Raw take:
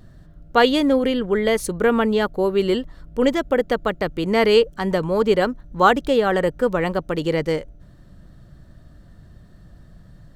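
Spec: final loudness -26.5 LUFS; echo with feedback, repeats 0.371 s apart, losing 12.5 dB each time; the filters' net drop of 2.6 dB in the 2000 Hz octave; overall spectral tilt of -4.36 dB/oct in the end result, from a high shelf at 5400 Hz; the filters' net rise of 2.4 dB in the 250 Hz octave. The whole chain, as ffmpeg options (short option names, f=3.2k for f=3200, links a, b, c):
-af "equalizer=f=250:t=o:g=3,equalizer=f=2k:t=o:g=-4.5,highshelf=f=5.4k:g=8.5,aecho=1:1:371|742|1113:0.237|0.0569|0.0137,volume=-7.5dB"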